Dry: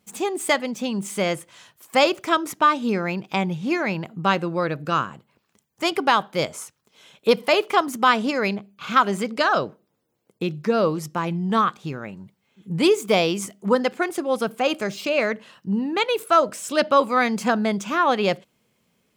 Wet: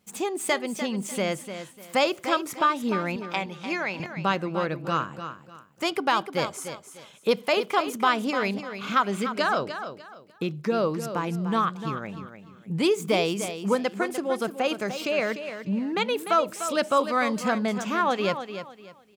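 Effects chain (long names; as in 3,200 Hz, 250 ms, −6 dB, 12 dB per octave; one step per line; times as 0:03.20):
0:03.16–0:04.00: meter weighting curve A
in parallel at −2 dB: downward compressor, threshold −27 dBFS, peak gain reduction 15 dB
on the sum: repeating echo 298 ms, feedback 27%, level −10 dB
level −6.5 dB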